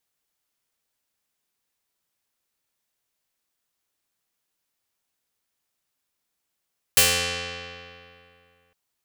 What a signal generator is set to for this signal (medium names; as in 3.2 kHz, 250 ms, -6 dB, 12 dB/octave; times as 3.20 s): plucked string F2, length 1.76 s, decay 2.53 s, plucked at 0.27, medium